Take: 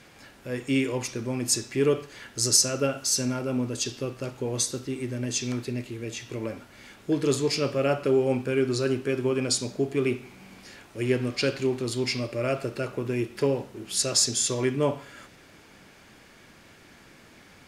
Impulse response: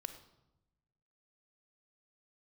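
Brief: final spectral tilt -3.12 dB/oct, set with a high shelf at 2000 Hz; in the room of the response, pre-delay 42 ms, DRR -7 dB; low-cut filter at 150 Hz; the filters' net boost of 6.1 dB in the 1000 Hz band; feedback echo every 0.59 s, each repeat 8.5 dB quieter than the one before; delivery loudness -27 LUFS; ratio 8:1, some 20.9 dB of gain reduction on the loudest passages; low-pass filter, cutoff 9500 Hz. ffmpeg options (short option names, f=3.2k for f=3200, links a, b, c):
-filter_complex "[0:a]highpass=150,lowpass=9.5k,equalizer=f=1k:t=o:g=7,highshelf=f=2k:g=4,acompressor=threshold=-35dB:ratio=8,aecho=1:1:590|1180|1770|2360:0.376|0.143|0.0543|0.0206,asplit=2[a][b];[1:a]atrim=start_sample=2205,adelay=42[c];[b][c]afir=irnorm=-1:irlink=0,volume=9.5dB[d];[a][d]amix=inputs=2:normalize=0,volume=4dB"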